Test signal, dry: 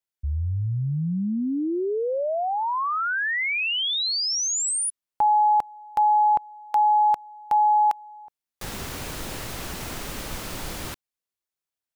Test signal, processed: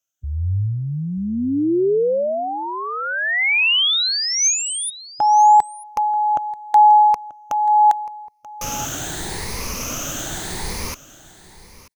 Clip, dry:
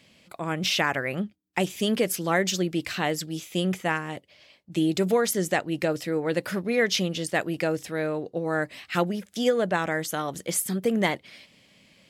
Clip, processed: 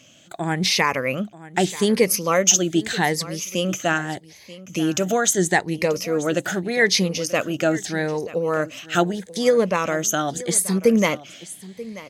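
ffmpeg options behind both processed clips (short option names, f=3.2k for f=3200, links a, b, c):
-filter_complex "[0:a]afftfilt=real='re*pow(10,11/40*sin(2*PI*(0.88*log(max(b,1)*sr/1024/100)/log(2)-(0.8)*(pts-256)/sr)))':imag='im*pow(10,11/40*sin(2*PI*(0.88*log(max(b,1)*sr/1024/100)/log(2)-(0.8)*(pts-256)/sr)))':win_size=1024:overlap=0.75,equalizer=f=6.3k:t=o:w=0.25:g=12,asplit=2[a][b];[b]aecho=0:1:935:0.133[c];[a][c]amix=inputs=2:normalize=0,volume=3.5dB"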